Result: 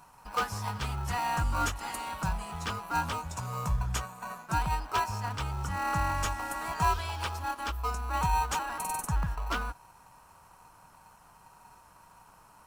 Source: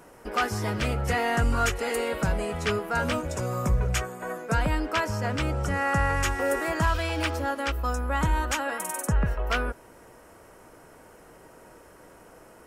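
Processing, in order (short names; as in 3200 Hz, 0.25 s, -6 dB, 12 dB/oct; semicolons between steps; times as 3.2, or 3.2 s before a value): EQ curve 170 Hz 0 dB, 450 Hz -28 dB, 940 Hz +12 dB, 2100 Hz -4 dB, 3300 Hz +4 dB; in parallel at -8 dB: sample-rate reducer 1700 Hz, jitter 0%; on the sum: gain -8.5 dB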